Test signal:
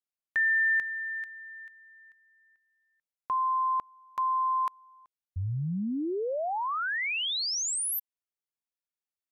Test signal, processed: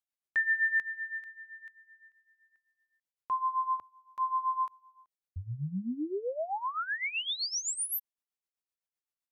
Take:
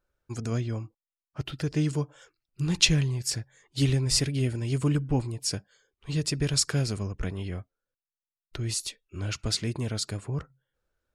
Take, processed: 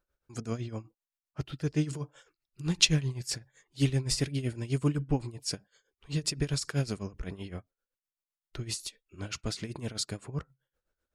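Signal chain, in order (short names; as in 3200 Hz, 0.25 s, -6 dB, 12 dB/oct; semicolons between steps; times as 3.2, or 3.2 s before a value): bell 100 Hz -7 dB 0.38 oct; tremolo 7.8 Hz, depth 81%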